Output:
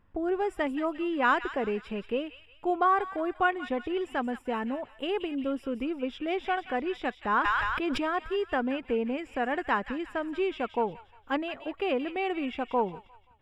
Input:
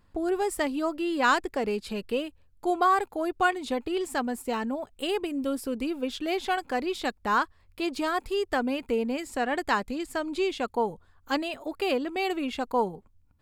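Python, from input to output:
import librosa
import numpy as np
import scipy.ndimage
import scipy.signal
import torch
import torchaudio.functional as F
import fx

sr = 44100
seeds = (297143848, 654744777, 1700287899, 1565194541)

y = scipy.signal.savgol_filter(x, 25, 4, mode='constant')
y = fx.echo_wet_highpass(y, sr, ms=176, feedback_pct=42, hz=1800.0, wet_db=-8.0)
y = fx.sustainer(y, sr, db_per_s=20.0, at=(7.43, 8.05), fade=0.02)
y = F.gain(torch.from_numpy(y), -1.5).numpy()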